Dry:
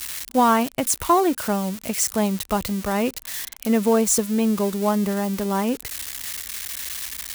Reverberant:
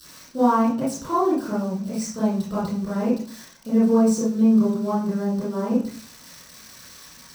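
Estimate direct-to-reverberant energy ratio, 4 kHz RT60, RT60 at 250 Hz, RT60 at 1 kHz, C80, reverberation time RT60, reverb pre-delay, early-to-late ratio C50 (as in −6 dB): −11.0 dB, 0.40 s, 0.70 s, 0.45 s, 9.0 dB, 0.45 s, 23 ms, 2.0 dB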